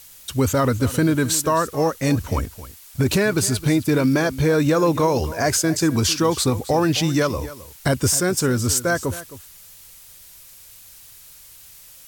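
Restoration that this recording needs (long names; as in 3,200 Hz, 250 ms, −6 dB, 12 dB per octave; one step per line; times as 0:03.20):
broadband denoise 21 dB, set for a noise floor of −45 dBFS
echo removal 264 ms −16 dB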